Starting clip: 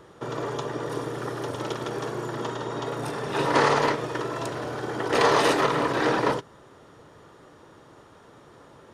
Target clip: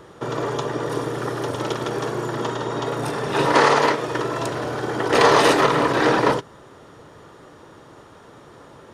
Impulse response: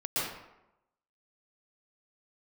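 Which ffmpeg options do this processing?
-filter_complex "[0:a]asettb=1/sr,asplit=3[link_01][link_02][link_03];[link_01]atrim=end=3.524[link_04];[link_02]atrim=start=3.52:end=4.08,asetpts=PTS-STARTPTS,afade=type=in:duration=0.004:curve=qsin,afade=type=out:start_time=0.556:duration=0.004:curve=qsin,highpass=frequency=210:poles=1[link_05];[link_03]atrim=start=4.076[link_06];[link_04][link_05]acrossfade=duration=0.004:curve1=hsin:curve2=qsin[link_07];[link_07][link_06]acrossfade=duration=0.004:curve1=qsin:curve2=hsin,volume=5.5dB"

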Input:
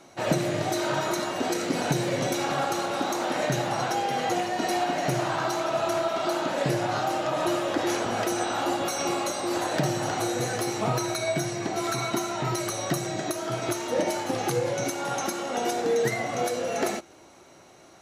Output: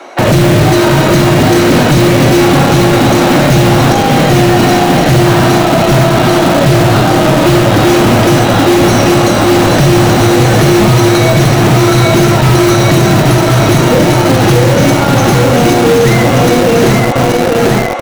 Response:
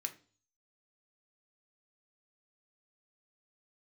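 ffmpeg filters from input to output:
-filter_complex "[0:a]bass=frequency=250:gain=8,treble=frequency=4000:gain=-14,aecho=1:1:828|1656|2484|3312|4140|4968|5796:0.596|0.328|0.18|0.0991|0.0545|0.03|0.0165,acrossover=split=400|3000[link_01][link_02][link_03];[link_02]acompressor=threshold=-35dB:ratio=6[link_04];[link_01][link_04][link_03]amix=inputs=3:normalize=0,acrossover=split=350|5500[link_05][link_06][link_07];[link_05]acrusher=bits=5:mix=0:aa=0.000001[link_08];[link_08][link_06][link_07]amix=inputs=3:normalize=0,apsyclip=26dB,volume=-2.5dB"

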